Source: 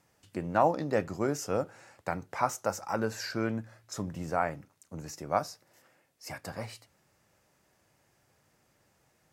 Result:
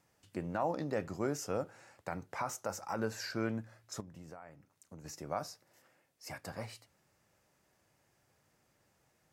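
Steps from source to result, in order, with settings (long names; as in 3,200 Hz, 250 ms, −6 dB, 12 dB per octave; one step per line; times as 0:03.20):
brickwall limiter −19 dBFS, peak gain reduction 7.5 dB
0:04.00–0:05.05: downward compressor 6 to 1, threshold −44 dBFS, peak gain reduction 16 dB
level −4 dB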